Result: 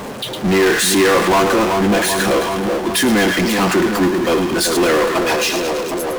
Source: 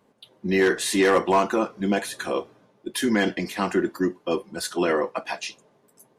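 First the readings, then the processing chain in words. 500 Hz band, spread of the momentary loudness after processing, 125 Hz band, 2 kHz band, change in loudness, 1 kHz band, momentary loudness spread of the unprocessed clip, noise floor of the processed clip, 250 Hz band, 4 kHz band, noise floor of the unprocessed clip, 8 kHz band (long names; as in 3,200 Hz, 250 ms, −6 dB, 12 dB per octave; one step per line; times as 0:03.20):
+8.5 dB, 6 LU, +10.5 dB, +10.0 dB, +9.0 dB, +9.0 dB, 12 LU, −27 dBFS, +9.0 dB, +13.0 dB, −63 dBFS, +13.0 dB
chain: echo with a time of its own for lows and highs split 1,100 Hz, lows 381 ms, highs 108 ms, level −10.5 dB
power curve on the samples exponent 0.35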